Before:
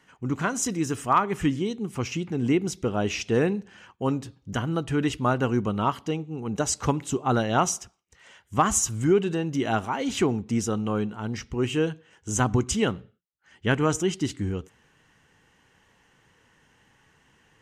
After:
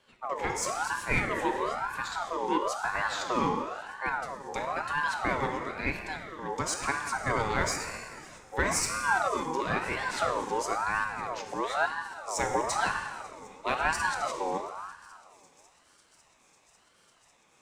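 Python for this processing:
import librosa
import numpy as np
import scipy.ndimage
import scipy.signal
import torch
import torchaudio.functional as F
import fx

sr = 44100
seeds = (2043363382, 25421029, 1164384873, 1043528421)

p1 = fx.highpass(x, sr, hz=520.0, slope=12, at=(5.49, 6.39))
p2 = np.clip(p1, -10.0 ** (-25.0 / 20.0), 10.0 ** (-25.0 / 20.0))
p3 = p1 + F.gain(torch.from_numpy(p2), -8.0).numpy()
p4 = fx.echo_wet_highpass(p3, sr, ms=548, feedback_pct=85, hz=4900.0, wet_db=-22)
p5 = fx.rev_plate(p4, sr, seeds[0], rt60_s=2.2, hf_ratio=0.7, predelay_ms=0, drr_db=3.0)
p6 = fx.ring_lfo(p5, sr, carrier_hz=980.0, swing_pct=35, hz=1.0)
y = F.gain(torch.from_numpy(p6), -5.5).numpy()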